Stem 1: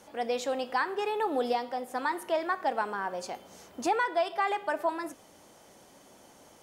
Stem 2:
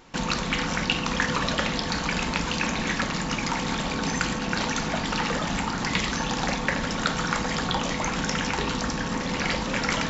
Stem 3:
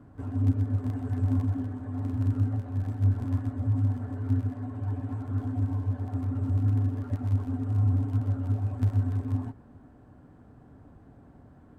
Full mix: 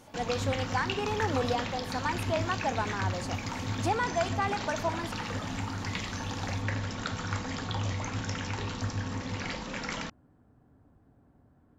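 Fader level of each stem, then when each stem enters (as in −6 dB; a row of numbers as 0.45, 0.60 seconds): −2.0, −10.0, −9.5 decibels; 0.00, 0.00, 0.00 seconds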